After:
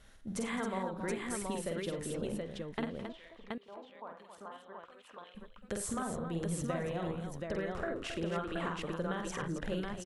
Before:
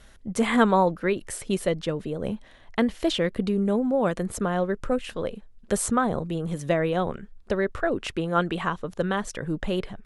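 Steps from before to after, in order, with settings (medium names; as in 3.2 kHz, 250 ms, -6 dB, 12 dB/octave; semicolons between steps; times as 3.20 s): compression, threshold -27 dBFS, peak gain reduction 13 dB; 2.85–5.35 s: LFO band-pass square 3 Hz 970–3200 Hz; multi-tap echo 48/88/105/212/271/726 ms -4/-14/-17.5/-15/-8/-3 dB; trim -8 dB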